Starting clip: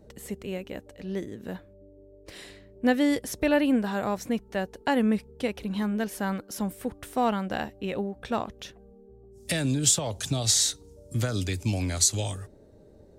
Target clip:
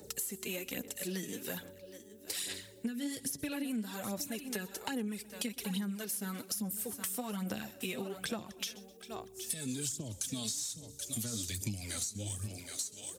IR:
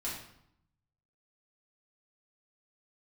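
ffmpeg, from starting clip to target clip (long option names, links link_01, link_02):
-filter_complex "[0:a]crystalizer=i=5:c=0,asplit=2[link_01][link_02];[link_02]aecho=0:1:767:0.112[link_03];[link_01][link_03]amix=inputs=2:normalize=0,acrossover=split=330[link_04][link_05];[link_05]acompressor=threshold=-35dB:ratio=5[link_06];[link_04][link_06]amix=inputs=2:normalize=0,flanger=delay=2.2:depth=7.3:regen=42:speed=0.21:shape=sinusoidal,highshelf=frequency=3800:gain=7.5,asplit=2[link_07][link_08];[link_08]aecho=0:1:125|250|375:0.0794|0.0342|0.0147[link_09];[link_07][link_09]amix=inputs=2:normalize=0,aphaser=in_gain=1:out_gain=1:delay=4.6:decay=0.55:speed=1.2:type=sinusoidal,highpass=130,acompressor=threshold=-35dB:ratio=8,asetrate=42845,aresample=44100,atempo=1.0293,volume=1dB"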